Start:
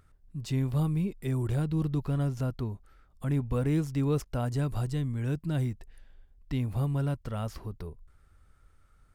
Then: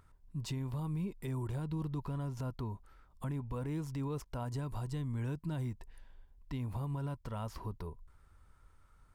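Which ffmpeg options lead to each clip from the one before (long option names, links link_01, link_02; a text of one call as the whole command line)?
ffmpeg -i in.wav -af "equalizer=frequency=970:width=5.1:gain=11.5,alimiter=level_in=4dB:limit=-24dB:level=0:latency=1:release=188,volume=-4dB,volume=-2dB" out.wav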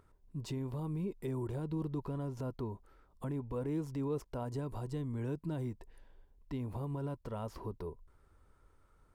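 ffmpeg -i in.wav -af "equalizer=frequency=410:width=0.85:gain=10,volume=-4dB" out.wav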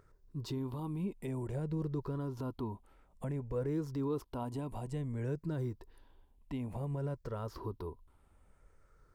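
ffmpeg -i in.wav -af "afftfilt=real='re*pow(10,7/40*sin(2*PI*(0.55*log(max(b,1)*sr/1024/100)/log(2)-(-0.56)*(pts-256)/sr)))':imag='im*pow(10,7/40*sin(2*PI*(0.55*log(max(b,1)*sr/1024/100)/log(2)-(-0.56)*(pts-256)/sr)))':win_size=1024:overlap=0.75" out.wav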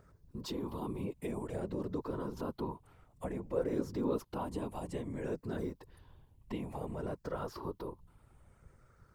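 ffmpeg -i in.wav -filter_complex "[0:a]acrossover=split=230|4100[link_01][link_02][link_03];[link_01]acompressor=threshold=-48dB:ratio=12[link_04];[link_04][link_02][link_03]amix=inputs=3:normalize=0,afftfilt=real='hypot(re,im)*cos(2*PI*random(0))':imag='hypot(re,im)*sin(2*PI*random(1))':win_size=512:overlap=0.75,volume=9dB" out.wav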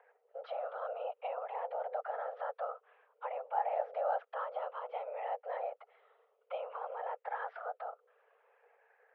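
ffmpeg -i in.wav -af "highpass=frequency=160:width_type=q:width=0.5412,highpass=frequency=160:width_type=q:width=1.307,lowpass=frequency=2700:width_type=q:width=0.5176,lowpass=frequency=2700:width_type=q:width=0.7071,lowpass=frequency=2700:width_type=q:width=1.932,afreqshift=320" out.wav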